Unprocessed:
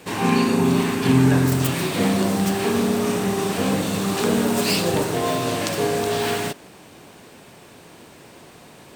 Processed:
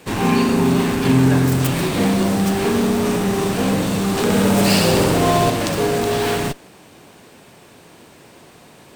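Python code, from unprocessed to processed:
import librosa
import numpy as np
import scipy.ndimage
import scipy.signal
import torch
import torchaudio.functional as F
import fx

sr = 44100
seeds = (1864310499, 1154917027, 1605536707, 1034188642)

p1 = fx.schmitt(x, sr, flips_db=-22.0)
p2 = x + (p1 * 10.0 ** (-4.5 / 20.0))
y = fx.room_flutter(p2, sr, wall_m=11.3, rt60_s=1.3, at=(4.23, 5.5))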